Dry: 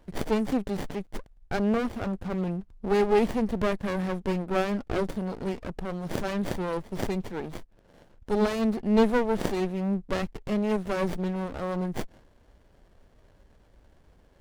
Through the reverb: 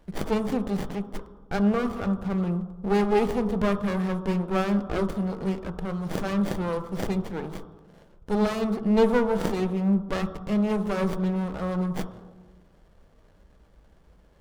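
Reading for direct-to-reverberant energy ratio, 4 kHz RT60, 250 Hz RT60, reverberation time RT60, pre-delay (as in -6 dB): 6.5 dB, 0.80 s, 1.6 s, 1.2 s, 3 ms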